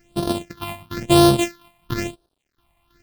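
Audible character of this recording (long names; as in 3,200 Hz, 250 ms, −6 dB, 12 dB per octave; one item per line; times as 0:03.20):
a buzz of ramps at a fixed pitch in blocks of 128 samples
sample-and-hold tremolo 3.1 Hz, depth 85%
a quantiser's noise floor 12 bits, dither none
phaser sweep stages 6, 1 Hz, lowest notch 400–2,100 Hz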